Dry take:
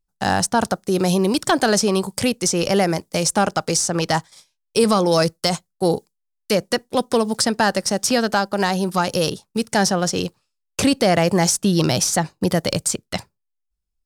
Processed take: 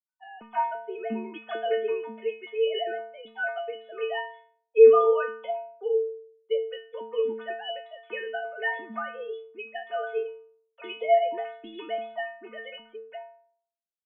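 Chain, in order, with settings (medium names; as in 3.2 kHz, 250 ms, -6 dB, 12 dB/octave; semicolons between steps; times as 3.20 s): formants replaced by sine waves; level-controlled noise filter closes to 1.1 kHz, open at -16 dBFS; inharmonic resonator 220 Hz, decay 0.64 s, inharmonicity 0.008; trim +6 dB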